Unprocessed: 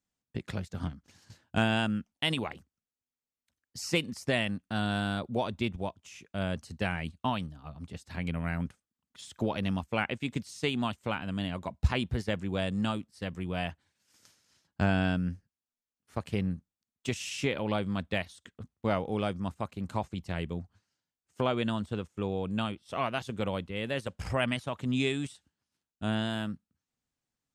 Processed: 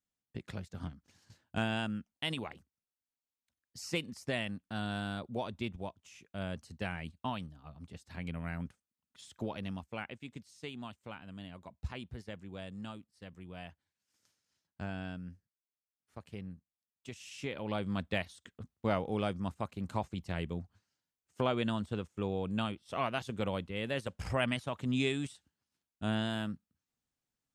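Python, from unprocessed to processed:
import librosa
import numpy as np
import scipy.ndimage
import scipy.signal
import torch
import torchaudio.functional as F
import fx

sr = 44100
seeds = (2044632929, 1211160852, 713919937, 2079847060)

y = fx.gain(x, sr, db=fx.line((9.3, -6.5), (10.36, -13.5), (17.16, -13.5), (17.94, -2.5)))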